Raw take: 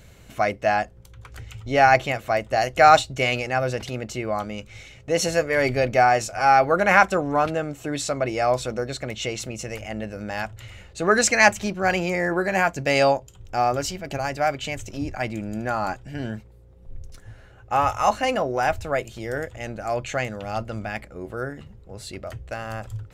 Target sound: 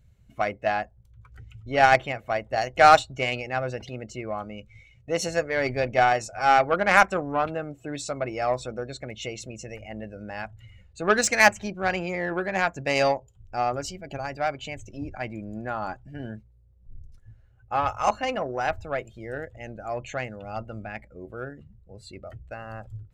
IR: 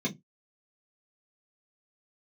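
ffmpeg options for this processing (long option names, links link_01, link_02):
-af "afftdn=noise_reduction=16:noise_floor=-39,aeval=exprs='0.891*(cos(1*acos(clip(val(0)/0.891,-1,1)))-cos(1*PI/2))+0.0562*(cos(7*acos(clip(val(0)/0.891,-1,1)))-cos(7*PI/2))':channel_layout=same,volume=-1dB"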